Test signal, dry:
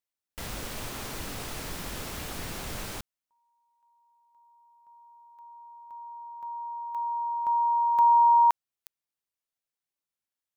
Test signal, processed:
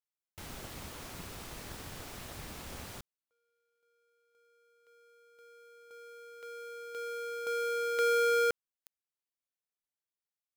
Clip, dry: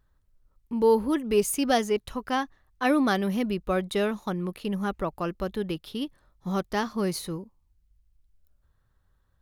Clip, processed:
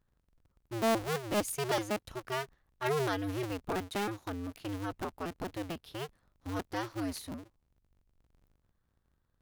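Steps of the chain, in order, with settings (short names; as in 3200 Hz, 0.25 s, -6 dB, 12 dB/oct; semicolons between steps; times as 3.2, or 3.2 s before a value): cycle switcher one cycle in 2, inverted; gain -8.5 dB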